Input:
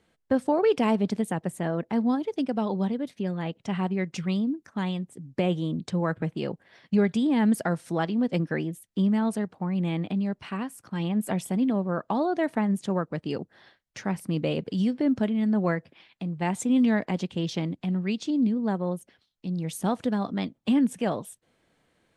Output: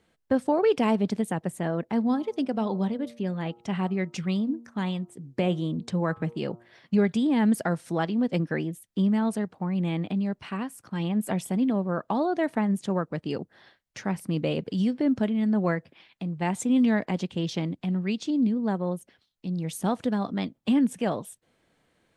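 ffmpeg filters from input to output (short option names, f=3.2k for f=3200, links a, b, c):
-filter_complex "[0:a]asettb=1/sr,asplit=3[a][b][c];[a]atrim=end=2.064[d];[b]atrim=start=2.06:end=7.06,asetpts=PTS-STARTPTS,afade=t=in:d=0.004:c=qsin,afade=t=out:st=4.996:d=0.004:c=qsin,bandreject=f=117.5:t=h:w=4,bandreject=f=235:t=h:w=4,bandreject=f=352.5:t=h:w=4,bandreject=f=470:t=h:w=4,bandreject=f=587.5:t=h:w=4,bandreject=f=705:t=h:w=4,bandreject=f=822.5:t=h:w=4,bandreject=f=940:t=h:w=4,bandreject=f=1.0575k:t=h:w=4,bandreject=f=1.175k:t=h:w=4,bandreject=f=1.2925k:t=h:w=4,bandreject=f=1.41k:t=h:w=4[e];[c]atrim=start=7.056[f];[d][e]acrossfade=d=0.004:c1=hsin:c2=qsin[g];[g][f]acrossfade=d=0.004:c1=qsin:c2=hsin"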